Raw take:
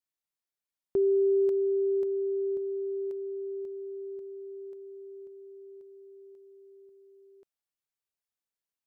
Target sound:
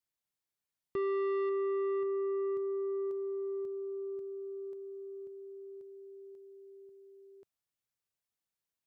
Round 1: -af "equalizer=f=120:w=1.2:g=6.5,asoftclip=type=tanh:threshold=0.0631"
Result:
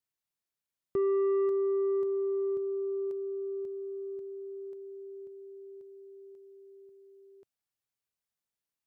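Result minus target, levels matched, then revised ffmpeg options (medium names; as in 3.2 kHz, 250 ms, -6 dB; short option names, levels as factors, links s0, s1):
saturation: distortion -7 dB
-af "equalizer=f=120:w=1.2:g=6.5,asoftclip=type=tanh:threshold=0.0299"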